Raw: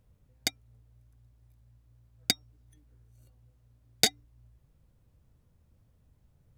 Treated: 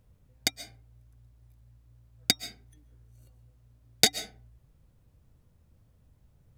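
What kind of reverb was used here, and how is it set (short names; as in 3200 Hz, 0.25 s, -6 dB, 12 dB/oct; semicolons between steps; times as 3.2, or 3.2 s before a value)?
digital reverb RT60 0.41 s, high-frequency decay 0.55×, pre-delay 95 ms, DRR 14 dB; gain +2.5 dB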